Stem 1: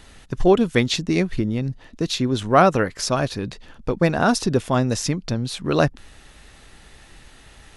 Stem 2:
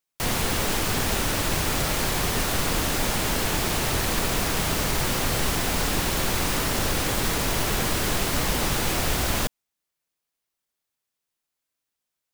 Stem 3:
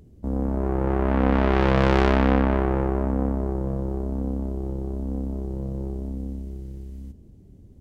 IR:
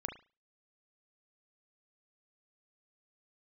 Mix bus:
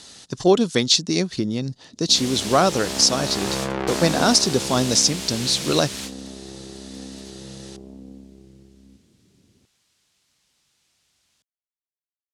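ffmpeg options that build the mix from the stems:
-filter_complex "[0:a]highshelf=frequency=3300:width_type=q:width=1.5:gain=11.5,aeval=exprs='0.891*(abs(mod(val(0)/0.891+3,4)-2)-1)':channel_layout=same,volume=0dB,asplit=2[link_01][link_02];[1:a]equalizer=frequency=220:width=0.34:gain=-14,acrossover=split=280|3000[link_03][link_04][link_05];[link_04]acompressor=threshold=-52dB:ratio=2[link_06];[link_03][link_06][link_05]amix=inputs=3:normalize=0,adelay=1950,volume=2.5dB[link_07];[2:a]adelay=1850,volume=-6dB[link_08];[link_02]apad=whole_len=629988[link_09];[link_07][link_09]sidechaingate=range=-37dB:threshold=-37dB:ratio=16:detection=peak[link_10];[link_01][link_10][link_08]amix=inputs=3:normalize=0,highpass=140,lowpass=7900,alimiter=limit=-4.5dB:level=0:latency=1:release=460"

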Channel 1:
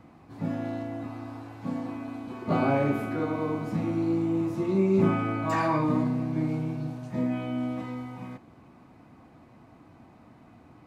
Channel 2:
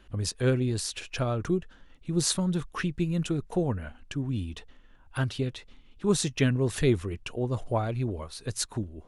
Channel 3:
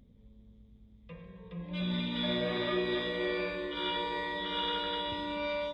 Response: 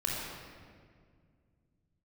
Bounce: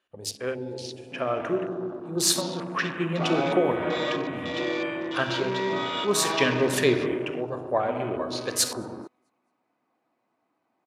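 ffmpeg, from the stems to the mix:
-filter_complex "[0:a]adynamicequalizer=threshold=0.00708:dfrequency=2300:dqfactor=0.7:tfrequency=2300:tqfactor=0.7:attack=5:release=100:ratio=0.375:range=2.5:mode=boostabove:tftype=highshelf,adelay=700,volume=-9dB,asplit=2[link_01][link_02];[link_02]volume=-14dB[link_03];[1:a]tremolo=f=0.6:d=0.44,volume=-1.5dB,asplit=4[link_04][link_05][link_06][link_07];[link_05]volume=-6.5dB[link_08];[link_06]volume=-17dB[link_09];[2:a]asoftclip=type=tanh:threshold=-24dB,adelay=1400,volume=-3dB,asplit=2[link_10][link_11];[link_11]volume=-21dB[link_12];[link_07]apad=whole_len=314555[link_13];[link_10][link_13]sidechaincompress=threshold=-40dB:ratio=8:attack=5.5:release=131[link_14];[3:a]atrim=start_sample=2205[link_15];[link_08][link_12]amix=inputs=2:normalize=0[link_16];[link_16][link_15]afir=irnorm=-1:irlink=0[link_17];[link_03][link_09]amix=inputs=2:normalize=0,aecho=0:1:219|438|657|876:1|0.28|0.0784|0.022[link_18];[link_01][link_04][link_14][link_17][link_18]amix=inputs=5:normalize=0,dynaudnorm=framelen=590:gausssize=5:maxgain=8.5dB,highpass=390,afwtdn=0.0126"

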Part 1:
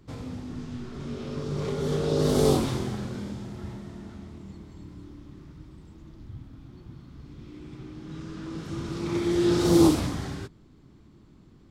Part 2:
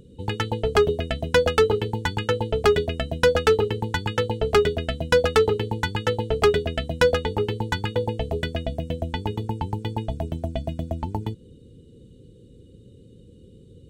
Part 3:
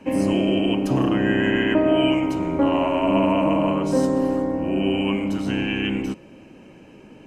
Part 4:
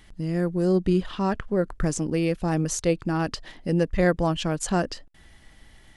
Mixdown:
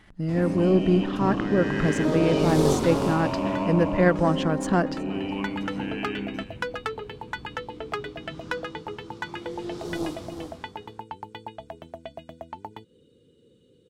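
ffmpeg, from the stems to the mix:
ffmpeg -i stem1.wav -i stem2.wav -i stem3.wav -i stem4.wav -filter_complex "[0:a]equalizer=frequency=1700:width_type=o:width=1.6:gain=-11,aeval=exprs='0.447*(cos(1*acos(clip(val(0)/0.447,-1,1)))-cos(1*PI/2))+0.112*(cos(2*acos(clip(val(0)/0.447,-1,1)))-cos(2*PI/2))':channel_layout=same,adelay=200,volume=-3.5dB,afade=type=out:start_time=8.49:duration=0.34:silence=0.266073,asplit=2[link_01][link_02];[link_02]volume=-8.5dB[link_03];[1:a]highpass=frequency=310:poles=1,acompressor=threshold=-36dB:ratio=2,adelay=1500,volume=-8dB[link_04];[2:a]equalizer=frequency=170:width_type=o:width=2.4:gain=9,adelay=300,volume=-17.5dB,asplit=2[link_05][link_06];[link_06]volume=-15dB[link_07];[3:a]aeval=exprs='if(lt(val(0),0),0.708*val(0),val(0))':channel_layout=same,equalizer=frequency=180:width=0.34:gain=10.5,volume=-8.5dB,asplit=3[link_08][link_09][link_10];[link_09]volume=-21.5dB[link_11];[link_10]apad=whole_len=678928[link_12];[link_04][link_12]sidechaincompress=threshold=-37dB:ratio=8:attack=16:release=490[link_13];[link_03][link_07][link_11]amix=inputs=3:normalize=0,aecho=0:1:367:1[link_14];[link_01][link_13][link_05][link_08][link_14]amix=inputs=5:normalize=0,equalizer=frequency=1400:width_type=o:width=2.7:gain=11" out.wav

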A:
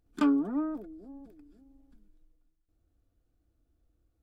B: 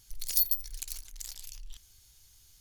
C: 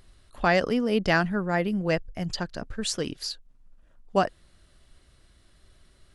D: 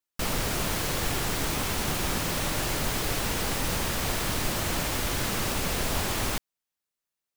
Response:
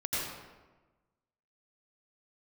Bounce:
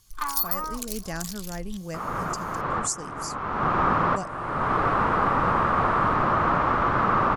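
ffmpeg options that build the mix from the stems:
-filter_complex "[0:a]asoftclip=type=tanh:threshold=-28.5dB,highpass=frequency=1100:width_type=q:width=11,volume=1.5dB[link_01];[1:a]volume=-1dB[link_02];[2:a]highshelf=frequency=5100:width_type=q:width=3:gain=12,volume=-19dB,asplit=2[link_03][link_04];[3:a]lowpass=frequency=1200:width_type=q:width=4.6,lowshelf=frequency=190:gain=-10,adelay=1750,volume=-1.5dB[link_05];[link_04]apad=whole_len=401930[link_06];[link_05][link_06]sidechaincompress=threshold=-54dB:ratio=4:attack=29:release=437[link_07];[link_01][link_02][link_03][link_07]amix=inputs=4:normalize=0,equalizer=frequency=140:width_type=o:width=1.7:gain=5.5,dynaudnorm=framelen=160:gausssize=9:maxgain=7dB"

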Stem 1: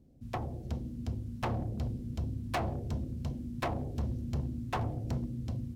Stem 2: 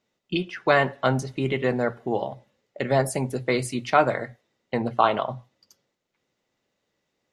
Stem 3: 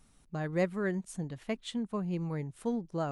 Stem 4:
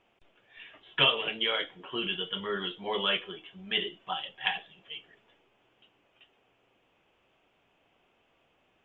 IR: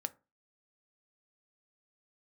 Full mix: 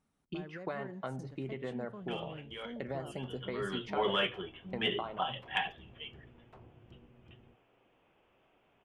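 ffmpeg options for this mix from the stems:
-filter_complex "[0:a]tremolo=f=250:d=0.919,adelay=1800,volume=-18.5dB[link_01];[1:a]acompressor=threshold=-26dB:ratio=5,agate=range=-33dB:threshold=-51dB:ratio=3:detection=peak,volume=-9.5dB[link_02];[2:a]highpass=frequency=160:poles=1,alimiter=level_in=4.5dB:limit=-24dB:level=0:latency=1,volume=-4.5dB,volume=-9.5dB,asplit=2[link_03][link_04];[3:a]asoftclip=type=tanh:threshold=-14dB,adelay=1100,volume=1.5dB[link_05];[link_04]apad=whole_len=438645[link_06];[link_05][link_06]sidechaincompress=threshold=-60dB:ratio=8:attack=5.7:release=617[link_07];[link_01][link_02][link_03][link_07]amix=inputs=4:normalize=0,highshelf=frequency=3100:gain=-12"

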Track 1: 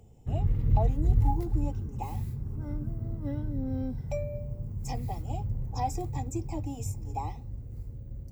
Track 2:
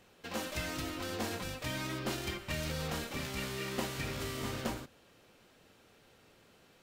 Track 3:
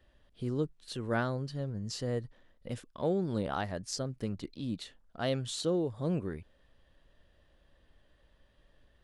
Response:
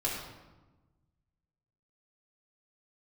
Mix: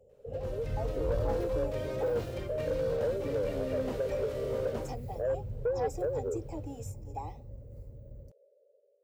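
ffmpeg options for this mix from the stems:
-filter_complex "[0:a]volume=-15dB[link_01];[1:a]acrossover=split=5400[link_02][link_03];[link_03]acompressor=threshold=-52dB:ratio=4:attack=1:release=60[link_04];[link_02][link_04]amix=inputs=2:normalize=0,equalizer=frequency=3300:width=0.5:gain=-5.5,volume=2.5dB,asplit=2[link_05][link_06];[link_06]volume=-15dB[link_07];[2:a]volume=1dB[link_08];[link_05][link_08]amix=inputs=2:normalize=0,asuperpass=centerf=500:order=8:qfactor=2.4,acompressor=threshold=-43dB:ratio=6,volume=0dB[link_09];[link_07]aecho=0:1:94:1[link_10];[link_01][link_09][link_10]amix=inputs=3:normalize=0,equalizer=frequency=500:width_type=o:width=0.98:gain=8,dynaudnorm=framelen=150:gausssize=11:maxgain=8dB,asoftclip=type=tanh:threshold=-23dB"

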